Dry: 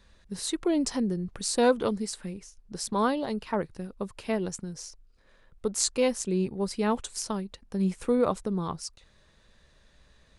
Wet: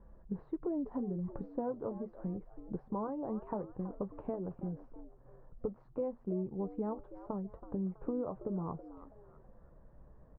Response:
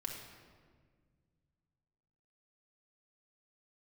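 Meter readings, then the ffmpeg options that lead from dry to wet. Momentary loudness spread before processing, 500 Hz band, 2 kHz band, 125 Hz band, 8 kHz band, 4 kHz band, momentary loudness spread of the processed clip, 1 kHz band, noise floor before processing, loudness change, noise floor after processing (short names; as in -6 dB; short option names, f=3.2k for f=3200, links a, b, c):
13 LU, -10.5 dB, under -25 dB, -6.5 dB, under -40 dB, under -40 dB, 8 LU, -12.5 dB, -62 dBFS, -10.5 dB, -60 dBFS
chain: -filter_complex "[0:a]acompressor=threshold=-37dB:ratio=6,lowpass=f=1k:w=0.5412,lowpass=f=1k:w=1.3066,flanger=delay=5.9:depth=1.5:regen=-65:speed=0.31:shape=triangular,asplit=2[a][b];[b]asplit=3[c][d][e];[c]adelay=326,afreqshift=110,volume=-15dB[f];[d]adelay=652,afreqshift=220,volume=-24.9dB[g];[e]adelay=978,afreqshift=330,volume=-34.8dB[h];[f][g][h]amix=inputs=3:normalize=0[i];[a][i]amix=inputs=2:normalize=0,volume=7dB"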